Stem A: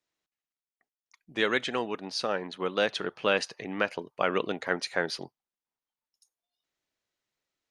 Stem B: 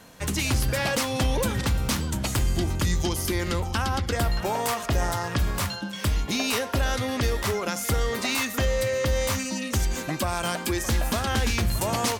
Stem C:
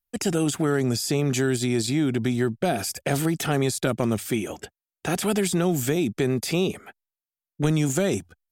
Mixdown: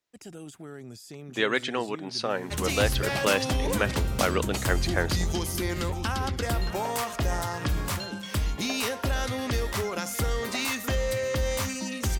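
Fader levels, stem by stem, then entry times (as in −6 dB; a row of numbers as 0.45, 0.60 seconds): +1.0, −3.0, −19.5 decibels; 0.00, 2.30, 0.00 seconds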